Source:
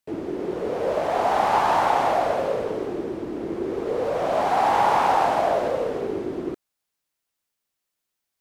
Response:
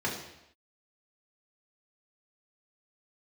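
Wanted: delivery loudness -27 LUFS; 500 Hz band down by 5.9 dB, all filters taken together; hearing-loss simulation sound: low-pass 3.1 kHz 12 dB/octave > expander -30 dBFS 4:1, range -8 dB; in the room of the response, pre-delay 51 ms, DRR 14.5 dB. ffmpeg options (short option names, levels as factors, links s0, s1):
-filter_complex "[0:a]equalizer=f=500:t=o:g=-8,asplit=2[s0][s1];[1:a]atrim=start_sample=2205,adelay=51[s2];[s1][s2]afir=irnorm=-1:irlink=0,volume=0.075[s3];[s0][s3]amix=inputs=2:normalize=0,lowpass=3100,agate=range=0.398:threshold=0.0316:ratio=4,volume=0.944"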